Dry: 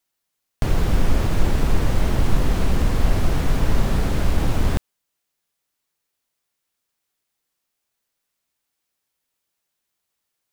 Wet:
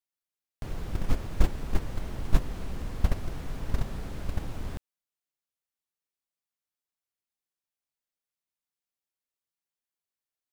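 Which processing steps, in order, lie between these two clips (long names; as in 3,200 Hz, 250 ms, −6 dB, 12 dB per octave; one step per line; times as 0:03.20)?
noise gate −11 dBFS, range −16 dB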